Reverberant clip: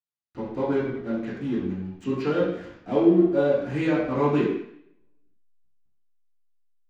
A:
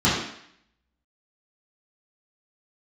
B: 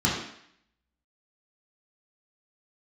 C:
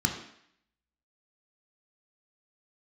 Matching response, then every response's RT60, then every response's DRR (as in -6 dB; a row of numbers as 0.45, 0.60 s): A; 0.65, 0.65, 0.65 s; -10.5, -6.0, 2.0 dB